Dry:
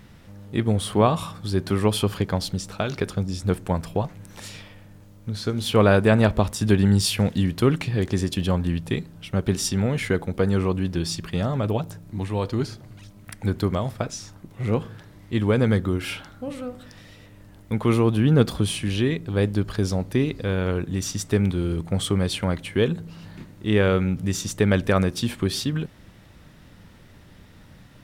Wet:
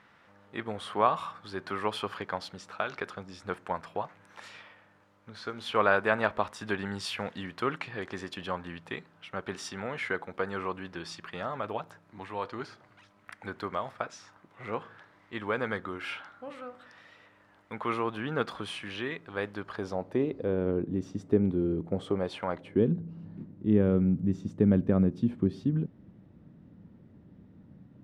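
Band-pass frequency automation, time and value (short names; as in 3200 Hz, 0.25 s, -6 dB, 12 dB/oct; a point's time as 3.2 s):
band-pass, Q 1.2
19.56 s 1300 Hz
20.68 s 320 Hz
21.8 s 320 Hz
22.47 s 1000 Hz
22.84 s 220 Hz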